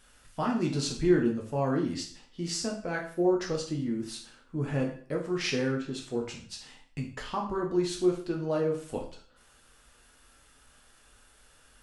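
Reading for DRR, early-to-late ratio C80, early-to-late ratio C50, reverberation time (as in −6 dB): −0.5 dB, 11.5 dB, 7.5 dB, 0.50 s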